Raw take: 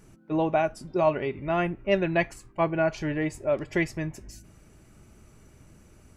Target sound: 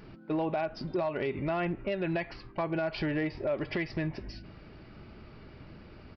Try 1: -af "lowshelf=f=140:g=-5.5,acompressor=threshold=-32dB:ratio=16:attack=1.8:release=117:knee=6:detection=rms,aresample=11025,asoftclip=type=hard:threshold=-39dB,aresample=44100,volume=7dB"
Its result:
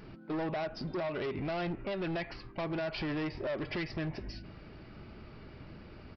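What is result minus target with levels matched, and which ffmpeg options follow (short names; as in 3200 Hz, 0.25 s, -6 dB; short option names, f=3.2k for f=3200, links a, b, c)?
hard clip: distortion +17 dB
-af "lowshelf=f=140:g=-5.5,acompressor=threshold=-32dB:ratio=16:attack=1.8:release=117:knee=6:detection=rms,aresample=11025,asoftclip=type=hard:threshold=-31dB,aresample=44100,volume=7dB"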